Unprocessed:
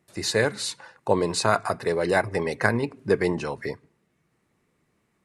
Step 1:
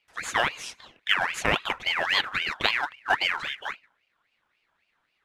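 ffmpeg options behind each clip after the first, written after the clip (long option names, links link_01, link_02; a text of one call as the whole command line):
ffmpeg -i in.wav -af "acrusher=bits=4:mode=log:mix=0:aa=0.000001,aemphasis=mode=reproduction:type=50fm,aeval=exprs='val(0)*sin(2*PI*1900*n/s+1900*0.4/3.7*sin(2*PI*3.7*n/s))':channel_layout=same" out.wav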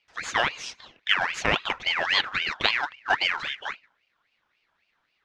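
ffmpeg -i in.wav -af "highshelf=frequency=7900:width_type=q:width=1.5:gain=-12.5" out.wav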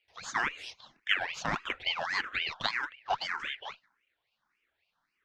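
ffmpeg -i in.wav -filter_complex "[0:a]asplit=2[link_01][link_02];[link_02]afreqshift=1.7[link_03];[link_01][link_03]amix=inputs=2:normalize=1,volume=-4dB" out.wav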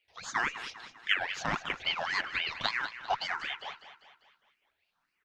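ffmpeg -i in.wav -af "aecho=1:1:199|398|597|796|995:0.224|0.112|0.056|0.028|0.014" out.wav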